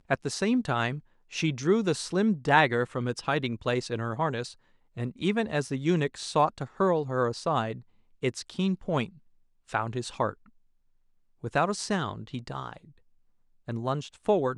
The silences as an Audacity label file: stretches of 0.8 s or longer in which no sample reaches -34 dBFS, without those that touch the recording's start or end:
10.310000	11.440000	silence
12.730000	13.680000	silence